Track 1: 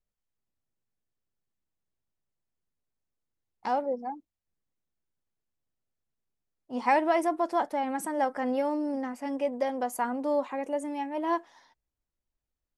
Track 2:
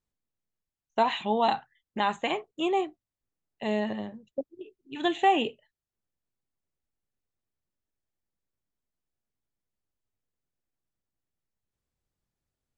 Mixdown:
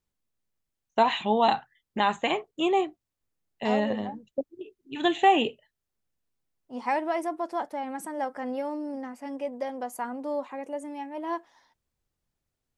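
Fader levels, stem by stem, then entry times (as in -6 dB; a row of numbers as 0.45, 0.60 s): -3.5, +2.5 dB; 0.00, 0.00 s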